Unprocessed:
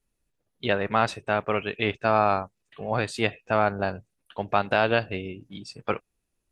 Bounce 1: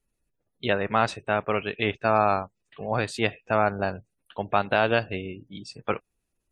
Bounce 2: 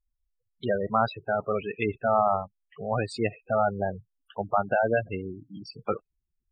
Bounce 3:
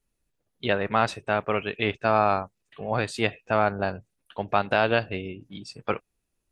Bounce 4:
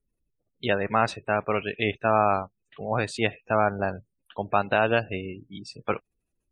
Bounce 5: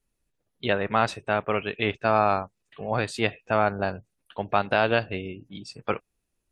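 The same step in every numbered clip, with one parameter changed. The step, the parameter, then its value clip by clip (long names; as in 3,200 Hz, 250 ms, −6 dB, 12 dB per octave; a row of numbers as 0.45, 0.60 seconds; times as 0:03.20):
gate on every frequency bin, under each frame's peak: −35, −10, −60, −25, −45 decibels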